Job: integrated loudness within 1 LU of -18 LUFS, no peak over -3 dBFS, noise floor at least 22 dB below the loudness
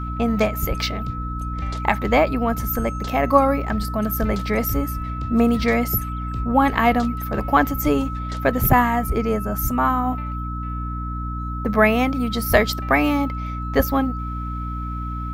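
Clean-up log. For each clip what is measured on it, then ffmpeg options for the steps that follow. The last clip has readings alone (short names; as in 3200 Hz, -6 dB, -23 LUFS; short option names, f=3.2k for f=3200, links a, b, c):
hum 60 Hz; harmonics up to 300 Hz; hum level -26 dBFS; steady tone 1300 Hz; tone level -31 dBFS; loudness -21.5 LUFS; peak -2.0 dBFS; loudness target -18.0 LUFS
-> -af "bandreject=f=60:t=h:w=6,bandreject=f=120:t=h:w=6,bandreject=f=180:t=h:w=6,bandreject=f=240:t=h:w=6,bandreject=f=300:t=h:w=6"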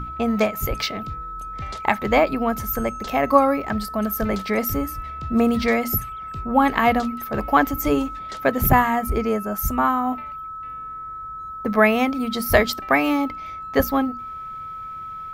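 hum none; steady tone 1300 Hz; tone level -31 dBFS
-> -af "bandreject=f=1.3k:w=30"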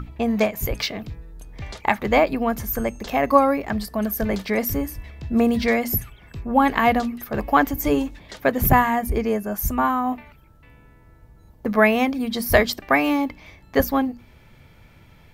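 steady tone none; loudness -21.5 LUFS; peak -2.0 dBFS; loudness target -18.0 LUFS
-> -af "volume=3.5dB,alimiter=limit=-3dB:level=0:latency=1"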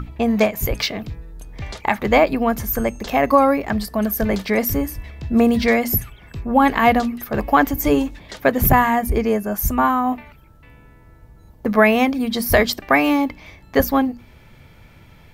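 loudness -18.5 LUFS; peak -3.0 dBFS; noise floor -47 dBFS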